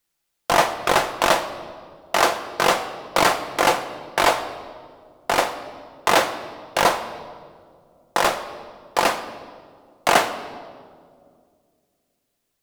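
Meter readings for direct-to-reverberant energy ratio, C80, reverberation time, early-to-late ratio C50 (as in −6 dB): 7.5 dB, 12.5 dB, 2.1 s, 12.0 dB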